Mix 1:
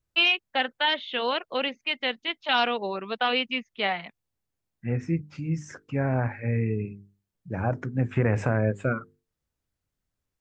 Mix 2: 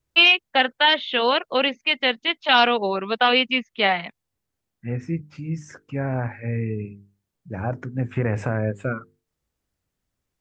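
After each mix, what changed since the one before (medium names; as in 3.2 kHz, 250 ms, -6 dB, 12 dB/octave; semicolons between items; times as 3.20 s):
first voice +7.0 dB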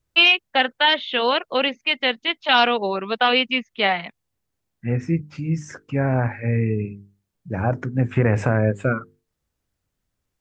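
second voice +5.0 dB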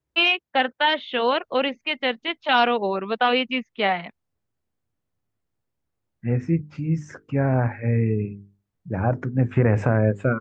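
second voice: entry +1.40 s; master: add treble shelf 2.5 kHz -9.5 dB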